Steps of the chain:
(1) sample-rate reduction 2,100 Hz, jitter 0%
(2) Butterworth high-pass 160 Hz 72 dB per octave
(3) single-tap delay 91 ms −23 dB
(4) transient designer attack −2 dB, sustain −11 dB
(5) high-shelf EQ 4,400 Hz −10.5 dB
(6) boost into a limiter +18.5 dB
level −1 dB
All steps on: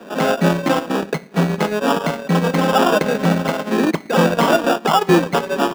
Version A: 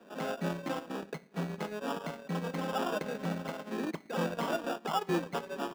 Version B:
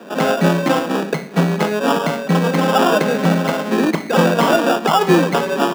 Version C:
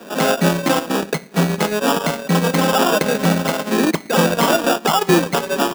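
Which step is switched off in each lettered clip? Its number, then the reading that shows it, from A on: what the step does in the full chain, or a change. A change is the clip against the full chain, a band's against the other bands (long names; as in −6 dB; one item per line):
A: 6, change in crest factor +4.0 dB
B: 4, change in integrated loudness +1.0 LU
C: 5, 8 kHz band +7.5 dB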